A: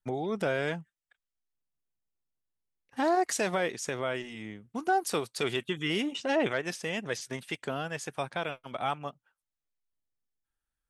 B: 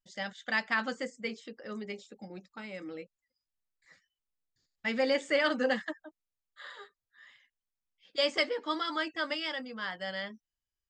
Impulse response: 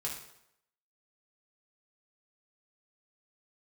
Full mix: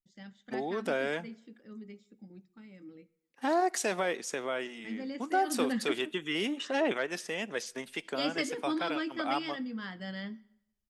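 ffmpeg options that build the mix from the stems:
-filter_complex "[0:a]highpass=frequency=200:width=0.5412,highpass=frequency=200:width=1.3066,adelay=450,volume=-2dB,asplit=2[link_01][link_02];[link_02]volume=-20.5dB[link_03];[1:a]lowshelf=frequency=400:width_type=q:width=1.5:gain=10.5,volume=-6.5dB,afade=type=in:start_time=5.46:duration=0.39:silence=0.298538,asplit=2[link_04][link_05];[link_05]volume=-15dB[link_06];[2:a]atrim=start_sample=2205[link_07];[link_03][link_06]amix=inputs=2:normalize=0[link_08];[link_08][link_07]afir=irnorm=-1:irlink=0[link_09];[link_01][link_04][link_09]amix=inputs=3:normalize=0"

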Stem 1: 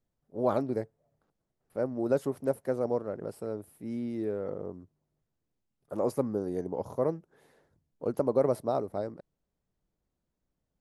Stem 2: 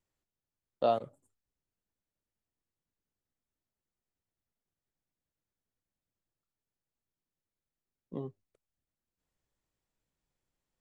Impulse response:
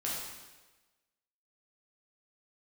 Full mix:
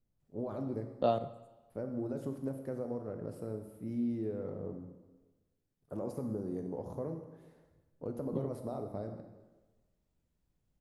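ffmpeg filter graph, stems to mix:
-filter_complex "[0:a]alimiter=limit=-20.5dB:level=0:latency=1:release=27,acompressor=threshold=-33dB:ratio=3,volume=-10.5dB,asplit=2[link_01][link_02];[link_02]volume=-5dB[link_03];[1:a]adelay=200,volume=-4.5dB,asplit=2[link_04][link_05];[link_05]volume=-16.5dB[link_06];[2:a]atrim=start_sample=2205[link_07];[link_03][link_06]amix=inputs=2:normalize=0[link_08];[link_08][link_07]afir=irnorm=-1:irlink=0[link_09];[link_01][link_04][link_09]amix=inputs=3:normalize=0,lowshelf=frequency=290:gain=11"

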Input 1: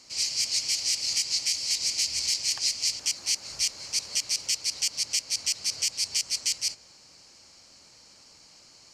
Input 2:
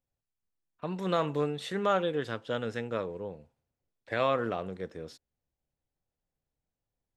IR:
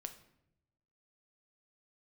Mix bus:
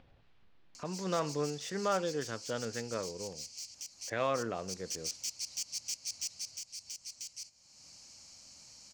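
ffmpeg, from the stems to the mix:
-filter_complex "[0:a]equalizer=frequency=400:width_type=o:width=0.67:gain=-10,equalizer=frequency=2500:width_type=o:width=0.67:gain=6,equalizer=frequency=6300:width_type=o:width=0.67:gain=6,asoftclip=type=hard:threshold=-16dB,equalizer=frequency=2100:width_type=o:width=2.3:gain=-9,adelay=750,volume=-11dB,afade=type=in:start_time=4.53:duration=0.5:silence=0.375837,afade=type=out:start_time=6.31:duration=0.34:silence=0.398107[link_01];[1:a]lowpass=frequency=3800:width=0.5412,lowpass=frequency=3800:width=1.3066,volume=-4.5dB[link_02];[link_01][link_02]amix=inputs=2:normalize=0,acompressor=mode=upward:threshold=-39dB:ratio=2.5"

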